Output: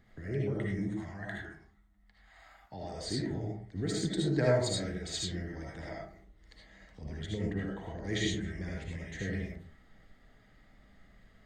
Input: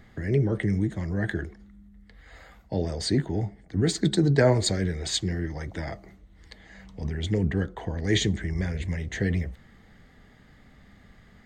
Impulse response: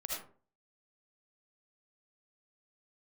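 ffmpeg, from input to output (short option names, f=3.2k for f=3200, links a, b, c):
-filter_complex "[0:a]asettb=1/sr,asplit=3[a][b][c];[a]atrim=end=0.884[d];[b]atrim=start=0.88:end=2.94,asetpts=PTS-STARTPTS,afade=t=in:d=0.004:c=qsin,afade=t=out:st=2.056:d=0.004:c=qsin,lowshelf=f=630:t=q:w=3:g=-6[e];[c]atrim=start=2.936[f];[d][e]acrossfade=d=0.004:c1=hsin:c2=qsin[g];[g][f]acrossfade=d=0.004:c1=qsin:c2=hsin[h];[1:a]atrim=start_sample=2205[i];[h][i]afir=irnorm=-1:irlink=0,volume=-8dB"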